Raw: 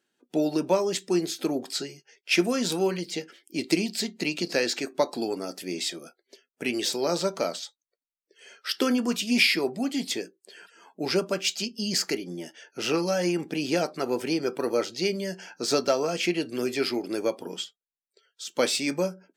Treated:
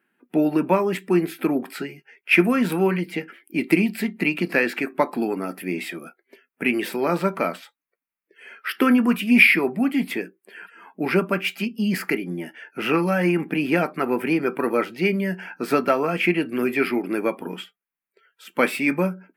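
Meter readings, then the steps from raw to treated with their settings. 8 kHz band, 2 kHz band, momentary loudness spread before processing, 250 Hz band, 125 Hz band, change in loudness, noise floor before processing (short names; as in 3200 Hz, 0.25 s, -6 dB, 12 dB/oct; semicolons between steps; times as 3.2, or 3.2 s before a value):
-9.0 dB, +9.0 dB, 11 LU, +7.0 dB, +8.5 dB, +5.0 dB, under -85 dBFS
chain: EQ curve 110 Hz 0 dB, 190 Hz +10 dB, 560 Hz +1 dB, 1100 Hz +9 dB, 2400 Hz +10 dB, 3700 Hz -9 dB, 6600 Hz -17 dB, 11000 Hz +5 dB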